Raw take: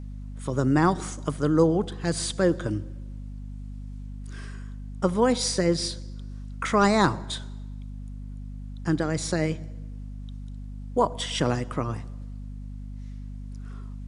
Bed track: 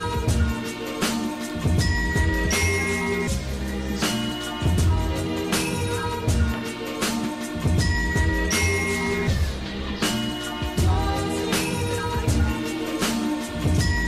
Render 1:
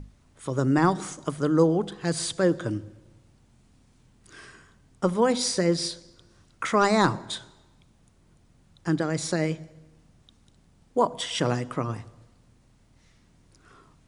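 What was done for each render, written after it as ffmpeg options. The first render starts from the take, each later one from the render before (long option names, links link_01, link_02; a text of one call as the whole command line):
ffmpeg -i in.wav -af "bandreject=frequency=50:width_type=h:width=6,bandreject=frequency=100:width_type=h:width=6,bandreject=frequency=150:width_type=h:width=6,bandreject=frequency=200:width_type=h:width=6,bandreject=frequency=250:width_type=h:width=6" out.wav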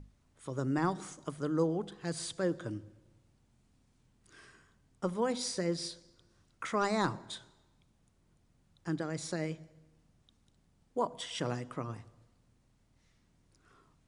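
ffmpeg -i in.wav -af "volume=-10dB" out.wav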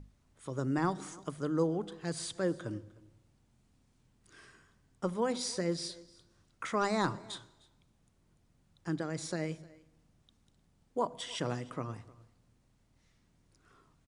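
ffmpeg -i in.wav -af "aecho=1:1:305:0.0708" out.wav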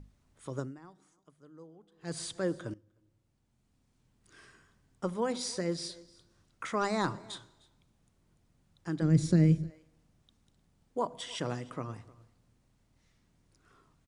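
ffmpeg -i in.wav -filter_complex "[0:a]asplit=3[link_01][link_02][link_03];[link_01]afade=type=out:start_time=9.01:duration=0.02[link_04];[link_02]asubboost=boost=11.5:cutoff=230,afade=type=in:start_time=9.01:duration=0.02,afade=type=out:start_time=9.69:duration=0.02[link_05];[link_03]afade=type=in:start_time=9.69:duration=0.02[link_06];[link_04][link_05][link_06]amix=inputs=3:normalize=0,asplit=4[link_07][link_08][link_09][link_10];[link_07]atrim=end=0.8,asetpts=PTS-STARTPTS,afade=type=out:start_time=0.59:duration=0.21:curve=qua:silence=0.0794328[link_11];[link_08]atrim=start=0.8:end=1.91,asetpts=PTS-STARTPTS,volume=-22dB[link_12];[link_09]atrim=start=1.91:end=2.74,asetpts=PTS-STARTPTS,afade=type=in:duration=0.21:curve=qua:silence=0.0794328,afade=type=out:start_time=0.826:duration=0.004:curve=hsin:silence=0.125893[link_13];[link_10]atrim=start=2.74,asetpts=PTS-STARTPTS,afade=type=in:duration=1.67:silence=0.125893[link_14];[link_11][link_12][link_13][link_14]concat=n=4:v=0:a=1" out.wav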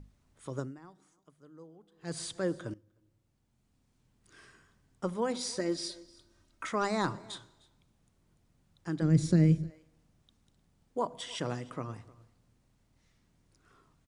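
ffmpeg -i in.wav -filter_complex "[0:a]asettb=1/sr,asplit=3[link_01][link_02][link_03];[link_01]atrim=end=5.594[link_04];[link_02]atrim=start=5.59:end=6.69,asetpts=PTS-STARTPTS,afade=type=in:duration=0.004:curve=qsin,afade=type=out:start_time=1.096:duration=0.004:curve=qsin,aecho=1:1:3.2:0.56,atrim=end_sample=48510[link_05];[link_03]atrim=start=6.686[link_06];[link_04][link_05]acrossfade=duration=0.004:curve1=hsin:curve2=qsin[link_07];[link_07][link_06]acrossfade=duration=0.004:curve1=qsin:curve2=hsin" out.wav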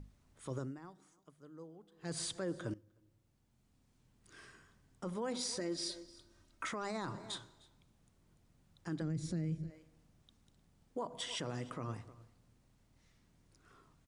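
ffmpeg -i in.wav -af "acompressor=threshold=-32dB:ratio=6,alimiter=level_in=6dB:limit=-24dB:level=0:latency=1:release=12,volume=-6dB" out.wav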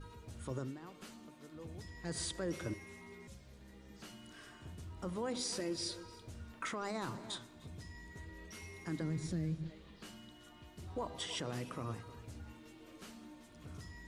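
ffmpeg -i in.wav -i bed.wav -filter_complex "[1:a]volume=-29dB[link_01];[0:a][link_01]amix=inputs=2:normalize=0" out.wav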